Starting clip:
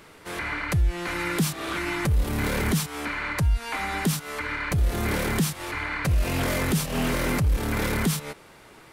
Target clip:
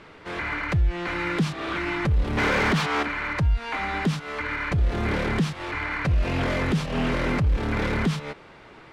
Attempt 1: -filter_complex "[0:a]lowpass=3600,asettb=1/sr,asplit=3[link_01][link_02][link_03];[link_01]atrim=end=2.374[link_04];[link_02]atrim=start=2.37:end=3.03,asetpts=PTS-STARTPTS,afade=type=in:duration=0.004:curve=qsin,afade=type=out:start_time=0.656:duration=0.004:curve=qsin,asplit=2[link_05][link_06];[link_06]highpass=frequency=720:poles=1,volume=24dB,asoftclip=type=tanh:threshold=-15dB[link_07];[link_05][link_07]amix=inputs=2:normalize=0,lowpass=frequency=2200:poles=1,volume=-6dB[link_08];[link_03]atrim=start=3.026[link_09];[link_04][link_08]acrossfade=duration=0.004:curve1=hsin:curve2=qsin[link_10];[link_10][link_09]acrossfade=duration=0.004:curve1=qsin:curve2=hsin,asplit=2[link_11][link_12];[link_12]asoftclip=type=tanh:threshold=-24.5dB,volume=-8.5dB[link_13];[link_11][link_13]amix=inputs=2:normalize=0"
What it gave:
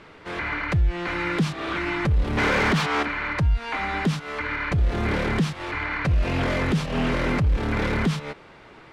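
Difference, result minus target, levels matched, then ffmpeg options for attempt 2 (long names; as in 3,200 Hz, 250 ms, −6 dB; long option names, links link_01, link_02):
soft clipping: distortion −6 dB
-filter_complex "[0:a]lowpass=3600,asettb=1/sr,asplit=3[link_01][link_02][link_03];[link_01]atrim=end=2.374[link_04];[link_02]atrim=start=2.37:end=3.03,asetpts=PTS-STARTPTS,afade=type=in:duration=0.004:curve=qsin,afade=type=out:start_time=0.656:duration=0.004:curve=qsin,asplit=2[link_05][link_06];[link_06]highpass=frequency=720:poles=1,volume=24dB,asoftclip=type=tanh:threshold=-15dB[link_07];[link_05][link_07]amix=inputs=2:normalize=0,lowpass=frequency=2200:poles=1,volume=-6dB[link_08];[link_03]atrim=start=3.026[link_09];[link_04][link_08]acrossfade=duration=0.004:curve1=hsin:curve2=qsin[link_10];[link_10][link_09]acrossfade=duration=0.004:curve1=qsin:curve2=hsin,asplit=2[link_11][link_12];[link_12]asoftclip=type=tanh:threshold=-34dB,volume=-8.5dB[link_13];[link_11][link_13]amix=inputs=2:normalize=0"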